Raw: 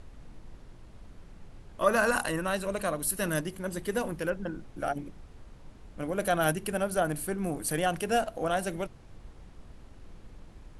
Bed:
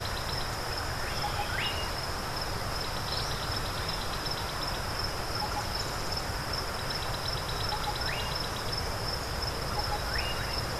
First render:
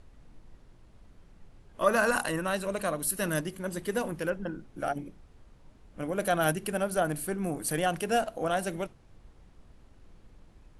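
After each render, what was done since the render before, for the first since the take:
noise reduction from a noise print 6 dB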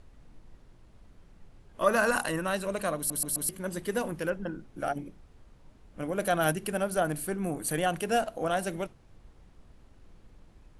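0:02.97: stutter in place 0.13 s, 4 plays
0:07.38–0:08.02: notch filter 5,200 Hz, Q 5.8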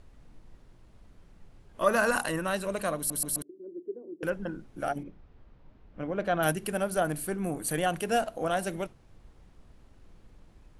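0:03.42–0:04.23: flat-topped band-pass 350 Hz, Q 3.4
0:05.03–0:06.43: high-frequency loss of the air 210 metres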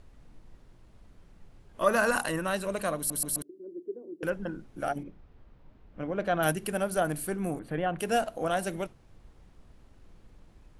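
0:07.59–0:07.99: high-frequency loss of the air 470 metres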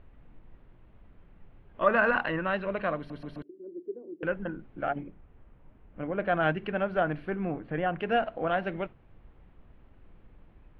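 dynamic equaliser 1,800 Hz, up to +3 dB, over −43 dBFS, Q 1
inverse Chebyshev low-pass filter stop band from 7,100 Hz, stop band 50 dB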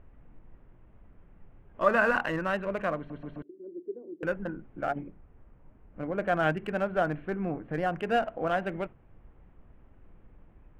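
adaptive Wiener filter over 9 samples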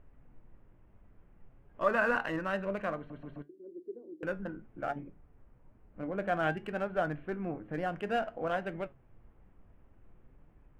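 flanger 0.57 Hz, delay 6.6 ms, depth 4 ms, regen +76%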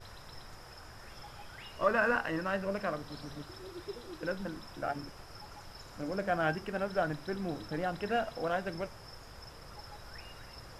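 mix in bed −17.5 dB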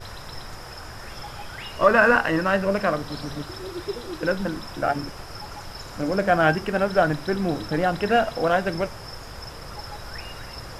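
level +12 dB
brickwall limiter −3 dBFS, peak gain reduction 1 dB

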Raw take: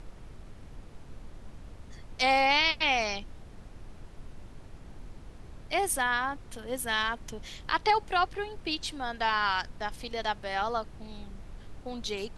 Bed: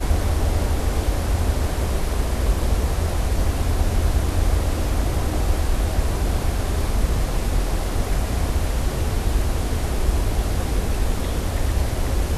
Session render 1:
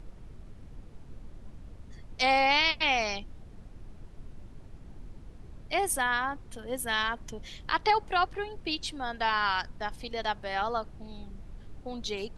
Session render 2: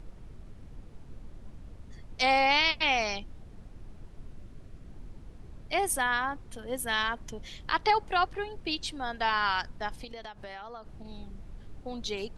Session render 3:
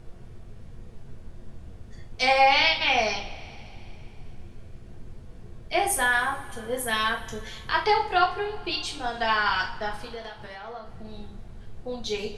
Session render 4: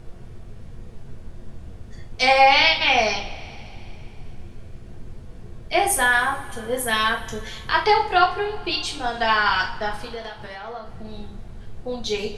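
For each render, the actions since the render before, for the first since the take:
broadband denoise 6 dB, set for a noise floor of −49 dBFS
0:04.37–0:04.94: notch filter 870 Hz, Q 5; 0:10.04–0:11.05: downward compressor 12 to 1, threshold −38 dBFS
coupled-rooms reverb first 0.36 s, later 3 s, from −22 dB, DRR −2 dB
level +4.5 dB

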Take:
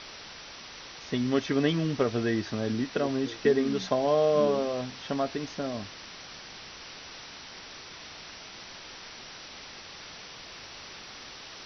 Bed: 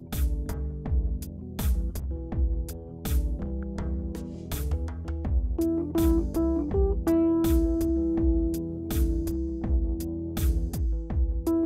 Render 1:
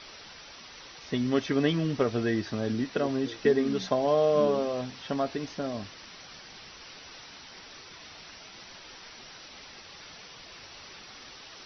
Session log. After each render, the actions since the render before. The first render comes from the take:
broadband denoise 6 dB, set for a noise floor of −46 dBFS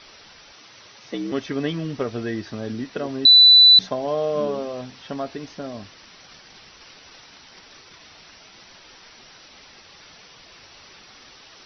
0:00.53–0:01.32: frequency shifter +68 Hz
0:03.25–0:03.79: beep over 3,980 Hz −7 dBFS
0:06.24–0:08.03: transient designer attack +9 dB, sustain −3 dB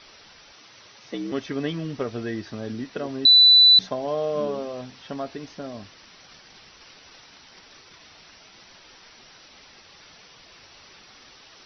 level −2.5 dB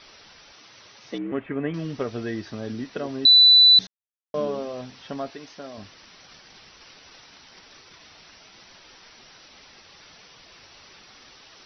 0:01.18–0:01.74: Butterworth low-pass 2,500 Hz
0:03.87–0:04.34: silence
0:05.30–0:05.78: low-shelf EQ 300 Hz −11 dB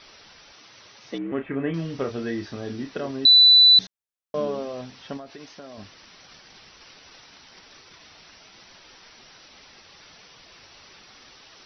0:01.35–0:03.11: double-tracking delay 30 ms −7 dB
0:05.17–0:05.79: downward compressor, threshold −36 dBFS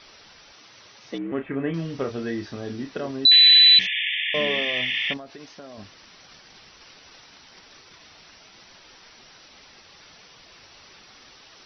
0:03.31–0:05.14: sound drawn into the spectrogram noise 1,700–3,600 Hz −26 dBFS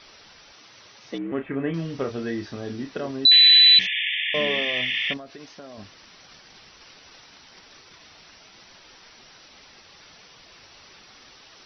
0:03.32–0:03.76: double-tracking delay 13 ms −12 dB
0:04.81–0:05.37: notch filter 870 Hz, Q 6.5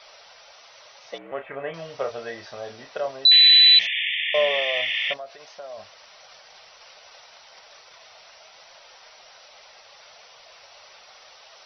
low shelf with overshoot 420 Hz −12 dB, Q 3
notch filter 1,700 Hz, Q 22

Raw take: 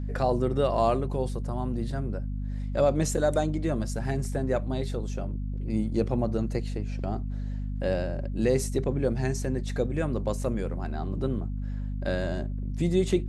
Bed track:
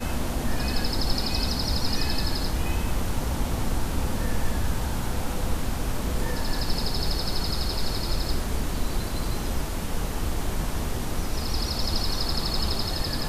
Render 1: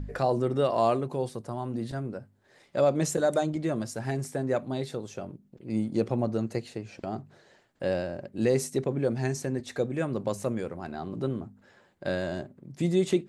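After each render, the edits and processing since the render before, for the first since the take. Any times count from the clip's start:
hum removal 50 Hz, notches 5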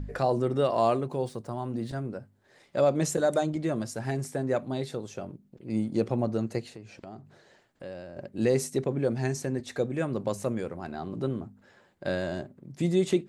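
0:01.04–0:01.90: running median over 3 samples
0:06.69–0:08.17: downward compressor 2 to 1, threshold −46 dBFS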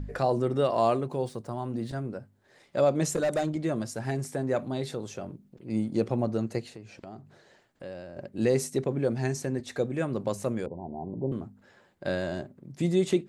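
0:03.09–0:03.52: gain into a clipping stage and back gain 22 dB
0:04.32–0:05.71: transient designer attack −1 dB, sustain +3 dB
0:10.66–0:11.32: Chebyshev low-pass filter 1,000 Hz, order 10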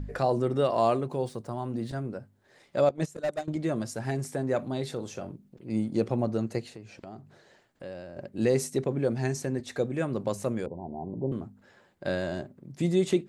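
0:02.89–0:03.48: noise gate −26 dBFS, range −18 dB
0:04.92–0:05.32: double-tracking delay 41 ms −13.5 dB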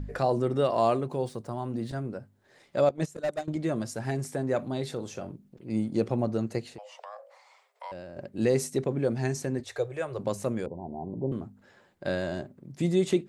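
0:06.78–0:07.92: frequency shifter +410 Hz
0:09.64–0:10.19: Chebyshev band-stop filter 110–440 Hz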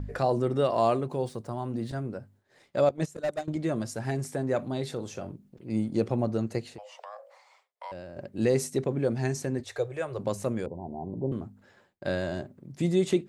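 downward expander −56 dBFS
parametric band 95 Hz +3.5 dB 0.36 octaves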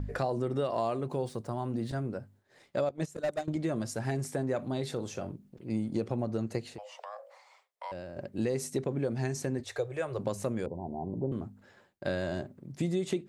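downward compressor 6 to 1, threshold −27 dBFS, peak gain reduction 8.5 dB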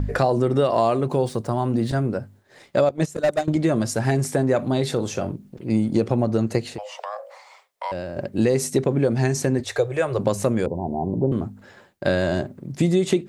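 level +11.5 dB

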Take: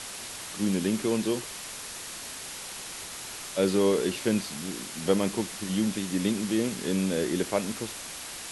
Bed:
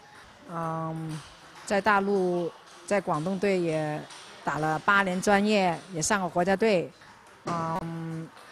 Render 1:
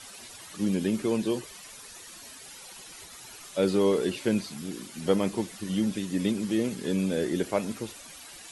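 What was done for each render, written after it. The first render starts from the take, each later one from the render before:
broadband denoise 12 dB, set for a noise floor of −40 dBFS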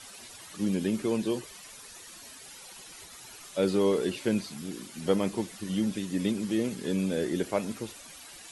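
level −1.5 dB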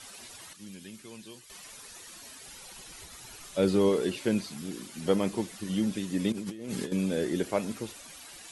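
0:00.53–0:01.50: guitar amp tone stack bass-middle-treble 5-5-5
0:02.47–0:03.89: low-shelf EQ 110 Hz +10.5 dB
0:06.32–0:06.92: compressor whose output falls as the input rises −37 dBFS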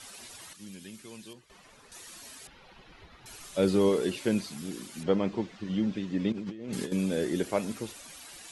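0:01.33–0:01.92: low-pass filter 1,300 Hz 6 dB per octave
0:02.47–0:03.26: high-frequency loss of the air 330 metres
0:05.03–0:06.73: high-frequency loss of the air 180 metres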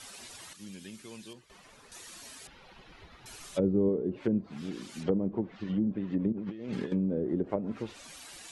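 treble cut that deepens with the level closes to 390 Hz, closed at −24 dBFS

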